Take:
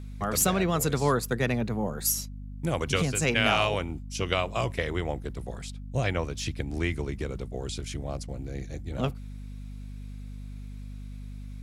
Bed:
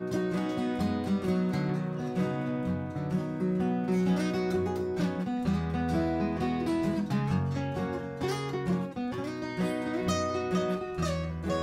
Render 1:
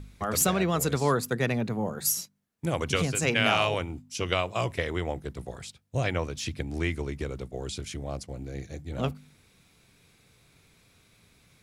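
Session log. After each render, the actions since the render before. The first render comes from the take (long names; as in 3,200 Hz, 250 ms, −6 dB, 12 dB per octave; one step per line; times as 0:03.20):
hum removal 50 Hz, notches 5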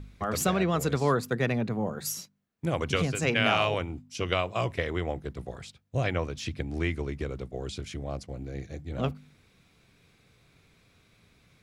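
parametric band 11,000 Hz −9 dB 1.6 octaves
notch filter 890 Hz, Q 21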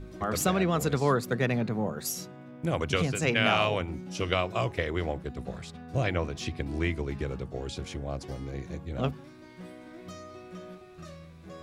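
mix in bed −15 dB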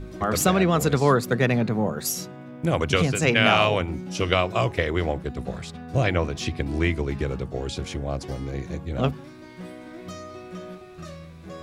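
level +6 dB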